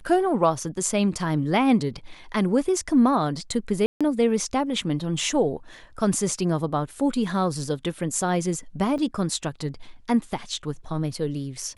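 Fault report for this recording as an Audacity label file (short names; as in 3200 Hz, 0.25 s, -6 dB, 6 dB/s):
3.860000	4.010000	gap 0.146 s
8.980000	8.980000	gap 2.3 ms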